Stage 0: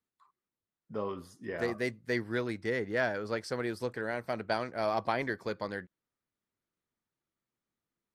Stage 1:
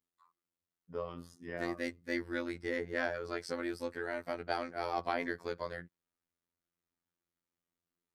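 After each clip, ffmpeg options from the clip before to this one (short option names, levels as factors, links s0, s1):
-af "afftfilt=real='hypot(re,im)*cos(PI*b)':imag='0':win_size=2048:overlap=0.75"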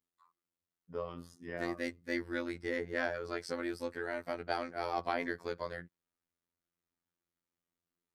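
-af anull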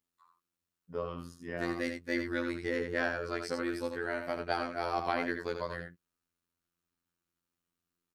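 -af "aecho=1:1:82:0.473,volume=1.33"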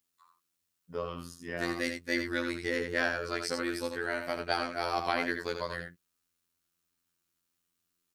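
-af "highshelf=f=2200:g=9"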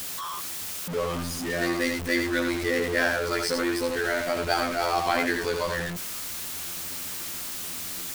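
-af "aeval=exprs='val(0)+0.5*0.0282*sgn(val(0))':c=same,volume=1.5"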